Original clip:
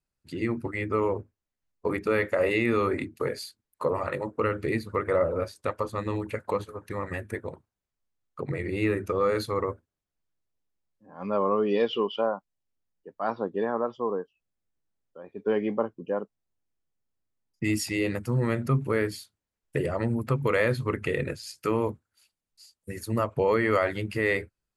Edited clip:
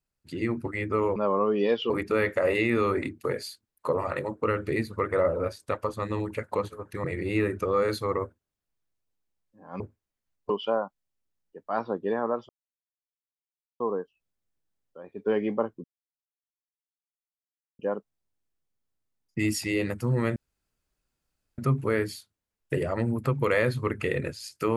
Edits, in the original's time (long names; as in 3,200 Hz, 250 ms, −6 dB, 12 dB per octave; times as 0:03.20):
0:01.16–0:01.86: swap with 0:11.27–0:12.01
0:07.00–0:08.51: remove
0:14.00: splice in silence 1.31 s
0:16.04: splice in silence 1.95 s
0:18.61: splice in room tone 1.22 s